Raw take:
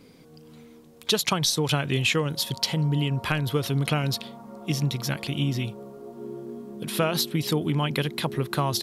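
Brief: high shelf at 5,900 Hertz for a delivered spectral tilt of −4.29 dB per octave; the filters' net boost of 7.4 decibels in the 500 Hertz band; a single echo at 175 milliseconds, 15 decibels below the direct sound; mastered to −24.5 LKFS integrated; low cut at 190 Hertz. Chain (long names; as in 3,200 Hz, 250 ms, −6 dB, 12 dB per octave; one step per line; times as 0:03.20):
high-pass filter 190 Hz
parametric band 500 Hz +9 dB
high-shelf EQ 5,900 Hz +4 dB
single-tap delay 175 ms −15 dB
level −0.5 dB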